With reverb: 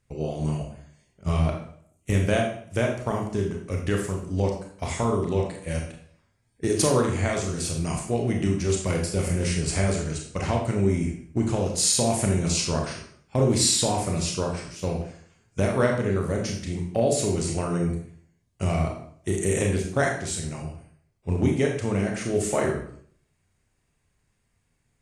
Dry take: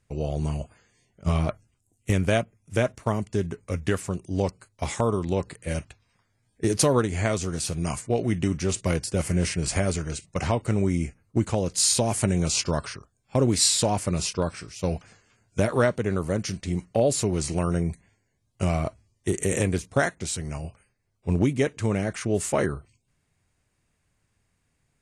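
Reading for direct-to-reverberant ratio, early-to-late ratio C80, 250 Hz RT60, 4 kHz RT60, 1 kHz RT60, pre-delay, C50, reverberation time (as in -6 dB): 0.5 dB, 8.5 dB, 0.60 s, 0.50 s, 0.55 s, 26 ms, 5.0 dB, 0.60 s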